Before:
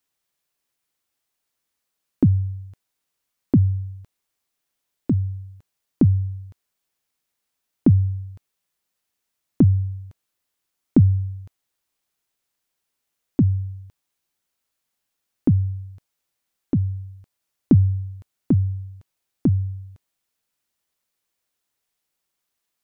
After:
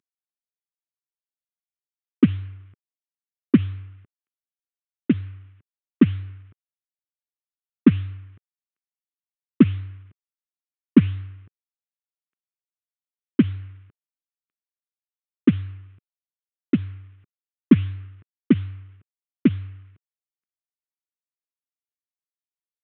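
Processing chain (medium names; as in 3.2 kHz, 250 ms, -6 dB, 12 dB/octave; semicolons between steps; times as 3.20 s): CVSD coder 16 kbps; high-pass 150 Hz 12 dB/octave; high-order bell 680 Hz -12 dB 1.2 oct; transient shaper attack +11 dB, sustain +7 dB; tape noise reduction on one side only decoder only; trim -5.5 dB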